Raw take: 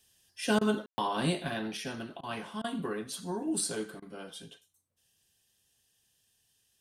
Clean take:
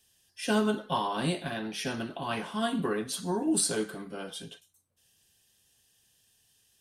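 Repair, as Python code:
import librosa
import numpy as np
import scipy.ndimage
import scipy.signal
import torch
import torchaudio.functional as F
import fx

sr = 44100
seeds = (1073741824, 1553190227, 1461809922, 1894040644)

y = fx.fix_ambience(x, sr, seeds[0], print_start_s=4.67, print_end_s=5.17, start_s=0.86, end_s=0.98)
y = fx.fix_interpolate(y, sr, at_s=(0.59, 2.21, 2.62, 4.0), length_ms=21.0)
y = fx.fix_echo_inverse(y, sr, delay_ms=81, level_db=-22.5)
y = fx.gain(y, sr, db=fx.steps((0.0, 0.0), (1.77, 5.0)))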